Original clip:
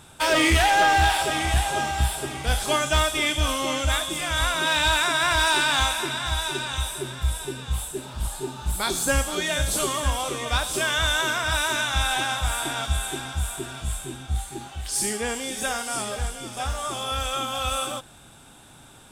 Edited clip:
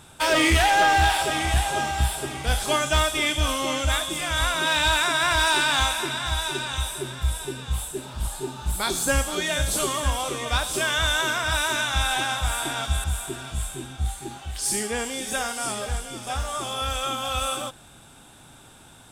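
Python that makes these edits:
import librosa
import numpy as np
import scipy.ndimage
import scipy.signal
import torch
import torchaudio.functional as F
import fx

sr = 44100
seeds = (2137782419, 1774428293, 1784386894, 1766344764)

y = fx.edit(x, sr, fx.cut(start_s=13.04, length_s=0.3), tone=tone)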